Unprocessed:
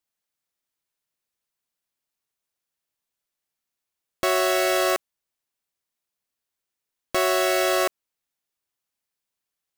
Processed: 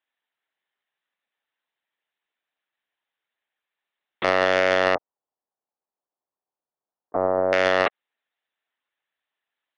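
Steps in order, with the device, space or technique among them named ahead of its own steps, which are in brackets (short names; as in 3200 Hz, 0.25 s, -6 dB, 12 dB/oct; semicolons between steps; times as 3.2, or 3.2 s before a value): talking toy (LPC vocoder at 8 kHz pitch kept; HPF 380 Hz 12 dB/oct; bell 1800 Hz +7 dB 0.26 oct; soft clip -11.5 dBFS, distortion -14 dB); 4.95–7.53 inverse Chebyshev low-pass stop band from 3400 Hz, stop band 60 dB; gain +5 dB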